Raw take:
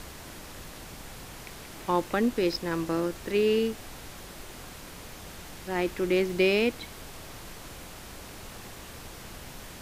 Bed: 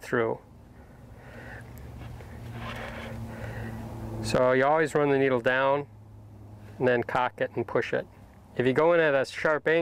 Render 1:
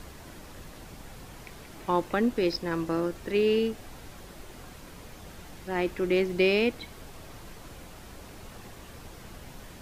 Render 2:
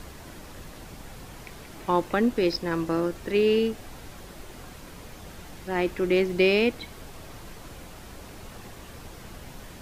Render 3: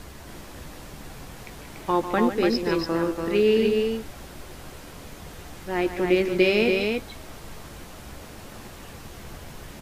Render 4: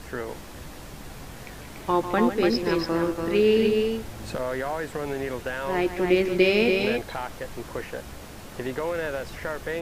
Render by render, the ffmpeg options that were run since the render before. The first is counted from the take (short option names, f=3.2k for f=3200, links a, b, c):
-af "afftdn=nr=6:nf=-45"
-af "volume=2.5dB"
-filter_complex "[0:a]asplit=2[a][b];[b]adelay=14,volume=-11dB[c];[a][c]amix=inputs=2:normalize=0,asplit=2[d][e];[e]aecho=0:1:147|288:0.282|0.631[f];[d][f]amix=inputs=2:normalize=0"
-filter_complex "[1:a]volume=-7dB[a];[0:a][a]amix=inputs=2:normalize=0"